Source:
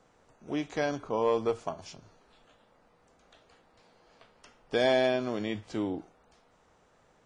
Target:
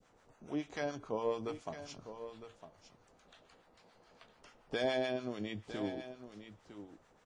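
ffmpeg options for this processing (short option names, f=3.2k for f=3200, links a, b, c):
-filter_complex "[0:a]asplit=2[a][b];[b]acompressor=threshold=-41dB:ratio=6,volume=0.5dB[c];[a][c]amix=inputs=2:normalize=0,adynamicequalizer=threshold=0.0126:dfrequency=980:dqfactor=0.71:tfrequency=980:tqfactor=0.71:attack=5:release=100:ratio=0.375:range=2.5:mode=cutabove:tftype=bell,acrossover=split=850[d][e];[d]aeval=exprs='val(0)*(1-0.7/2+0.7/2*cos(2*PI*7*n/s))':c=same[f];[e]aeval=exprs='val(0)*(1-0.7/2-0.7/2*cos(2*PI*7*n/s))':c=same[g];[f][g]amix=inputs=2:normalize=0,aecho=1:1:956:0.266,volume=-5.5dB"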